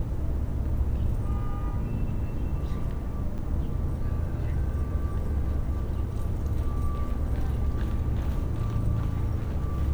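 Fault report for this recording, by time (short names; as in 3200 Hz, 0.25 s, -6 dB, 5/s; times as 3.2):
3.38–3.39 gap 6.9 ms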